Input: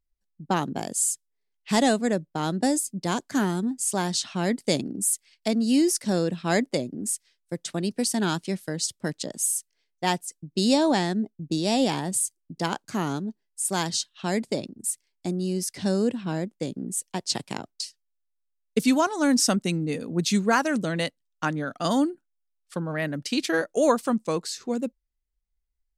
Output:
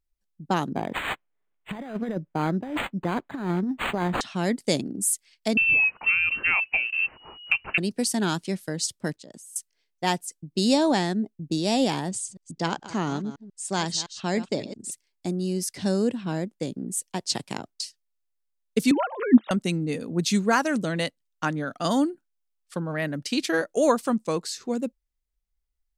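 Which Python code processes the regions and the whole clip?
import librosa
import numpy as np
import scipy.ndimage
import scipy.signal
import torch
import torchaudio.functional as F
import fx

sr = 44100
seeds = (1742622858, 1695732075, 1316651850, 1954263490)

y = fx.chain(x, sr, fx.over_compress(threshold_db=-26.0, ratio=-0.5),
    fx.resample_linear(factor=8), at=(0.72, 4.21))
y = fx.chain(y, sr, fx.law_mismatch(coded='mu'),
    fx.freq_invert(carrier_hz=2900),
    fx.band_squash(depth_pct=100), at=(5.57, 7.78))
y = fx.chain(y, sr, fx.high_shelf(hz=8900.0, db=-5.0),
    fx.level_steps(step_db=23), at=(9.16, 9.56))
y = fx.chain(y, sr, fx.reverse_delay(ms=141, wet_db=-13),
    fx.lowpass(hz=7500.0, slope=24), at=(12.09, 14.92))
y = fx.chain(y, sr, fx.sine_speech(),
    fx.peak_eq(hz=220.0, db=4.0, octaves=0.27),
    fx.notch(hz=1500.0, q=16.0), at=(18.91, 19.51))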